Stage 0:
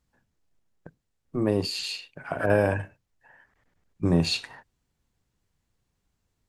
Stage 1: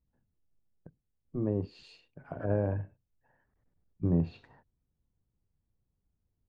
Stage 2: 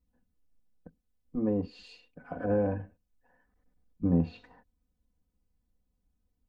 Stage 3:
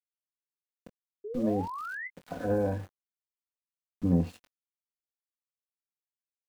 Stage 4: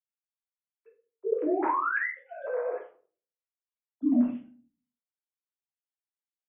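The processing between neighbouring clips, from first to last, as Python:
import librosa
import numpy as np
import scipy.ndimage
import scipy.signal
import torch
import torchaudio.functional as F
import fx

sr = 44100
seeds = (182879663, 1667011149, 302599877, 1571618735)

y1 = fx.high_shelf(x, sr, hz=6700.0, db=-9.5)
y1 = fx.env_lowpass_down(y1, sr, base_hz=2400.0, full_db=-21.0)
y1 = fx.curve_eq(y1, sr, hz=(100.0, 490.0, 2300.0), db=(0, -6, -18))
y1 = y1 * librosa.db_to_amplitude(-2.5)
y2 = y1 + 1.0 * np.pad(y1, (int(4.0 * sr / 1000.0), 0))[:len(y1)]
y3 = np.where(np.abs(y2) >= 10.0 ** (-45.5 / 20.0), y2, 0.0)
y3 = fx.spec_paint(y3, sr, seeds[0], shape='rise', start_s=1.24, length_s=0.84, low_hz=400.0, high_hz=2100.0, level_db=-38.0)
y3 = fx.doubler(y3, sr, ms=22.0, db=-11.0)
y4 = fx.sine_speech(y3, sr)
y4 = fx.room_shoebox(y4, sr, seeds[1], volume_m3=280.0, walls='furnished', distance_m=2.9)
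y4 = y4 * librosa.db_to_amplitude(-4.5)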